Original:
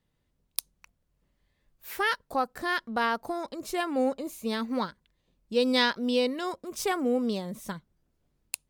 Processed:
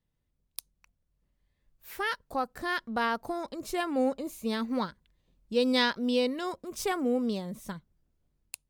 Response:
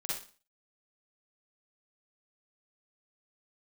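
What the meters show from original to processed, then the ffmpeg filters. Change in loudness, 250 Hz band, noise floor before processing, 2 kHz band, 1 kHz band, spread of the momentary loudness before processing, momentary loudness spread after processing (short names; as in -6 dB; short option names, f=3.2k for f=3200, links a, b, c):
-1.0 dB, -0.5 dB, -76 dBFS, -2.5 dB, -2.5 dB, 12 LU, 18 LU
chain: -af "lowshelf=f=140:g=7,dynaudnorm=f=710:g=5:m=7dB,volume=-8.5dB"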